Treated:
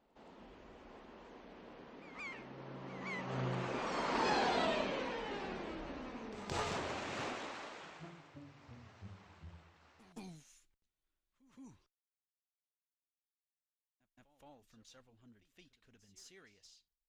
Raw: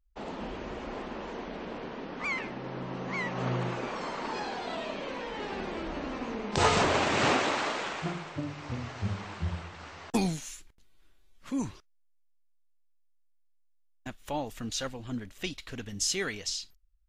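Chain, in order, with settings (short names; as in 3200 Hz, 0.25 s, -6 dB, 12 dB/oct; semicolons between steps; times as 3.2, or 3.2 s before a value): one diode to ground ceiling -21 dBFS; Doppler pass-by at 4.46, 8 m/s, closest 2.7 m; pre-echo 0.171 s -15.5 dB; gain +3.5 dB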